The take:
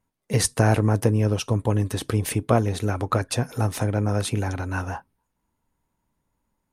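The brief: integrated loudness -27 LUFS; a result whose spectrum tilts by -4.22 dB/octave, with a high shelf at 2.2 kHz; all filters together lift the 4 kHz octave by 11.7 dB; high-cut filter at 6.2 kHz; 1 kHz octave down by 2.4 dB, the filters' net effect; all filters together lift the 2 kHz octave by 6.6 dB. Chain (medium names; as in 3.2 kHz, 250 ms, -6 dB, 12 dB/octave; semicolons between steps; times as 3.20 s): low-pass 6.2 kHz; peaking EQ 1 kHz -7.5 dB; peaking EQ 2 kHz +6.5 dB; treble shelf 2.2 kHz +6.5 dB; peaking EQ 4 kHz +8 dB; trim -5 dB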